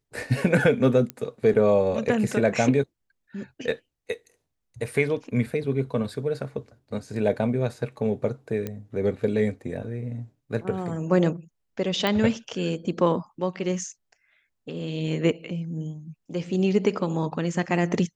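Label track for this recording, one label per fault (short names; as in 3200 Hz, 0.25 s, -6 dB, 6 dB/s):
1.100000	1.100000	pop -15 dBFS
8.670000	8.670000	pop -17 dBFS
12.070000	12.070000	pop -11 dBFS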